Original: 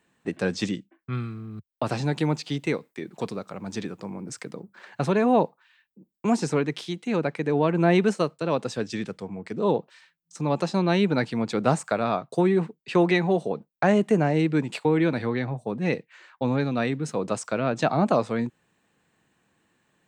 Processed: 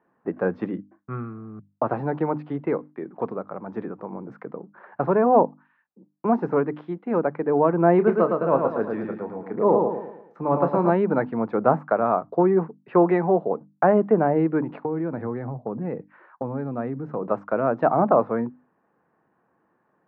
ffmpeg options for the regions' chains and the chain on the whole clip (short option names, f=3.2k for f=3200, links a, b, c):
-filter_complex "[0:a]asettb=1/sr,asplit=3[a][b][c];[a]atrim=end=7.964[d];[b]atrim=start=7.96:end=10.9,asetpts=PTS-STARTPTS,afade=t=in:d=0.004:c=qsin,afade=t=out:st=2.936:d=0.004:c=qsin,asplit=2[e][f];[f]adelay=29,volume=-10dB[g];[e][g]amix=inputs=2:normalize=0,atrim=end_sample=129654,aecho=1:1:111|222|333|444|555:0.631|0.265|0.111|0.0467|0.0196,atrim=end_sample=129654[h];[c]atrim=start=10.896[i];[d][h]acrossfade=d=0.004:c1=hsin:c2=qsin[j];[j][i]acrossfade=d=0.004:c1=qsin:c2=hsin,asettb=1/sr,asplit=3[k][l][m];[k]atrim=end=14.704[n];[l]atrim=start=14.7:end=17.23,asetpts=PTS-STARTPTS,afade=t=in:d=0.004:c=qsin,afade=t=out:st=2.526:d=0.004:c=qsin,lowshelf=f=250:g=10.5,acompressor=threshold=-28dB:ratio=3:attack=3.2:release=140:knee=1:detection=peak[o];[m]atrim=start=17.226[p];[n][o]acrossfade=d=0.004:c1=hsin:c2=qsin[q];[q][p]acrossfade=d=0.004:c1=qsin:c2=hsin,lowpass=f=1.3k:w=0.5412,lowpass=f=1.3k:w=1.3066,aemphasis=mode=production:type=bsi,bandreject=f=50:t=h:w=6,bandreject=f=100:t=h:w=6,bandreject=f=150:t=h:w=6,bandreject=f=200:t=h:w=6,bandreject=f=250:t=h:w=6,bandreject=f=300:t=h:w=6,volume=5.5dB"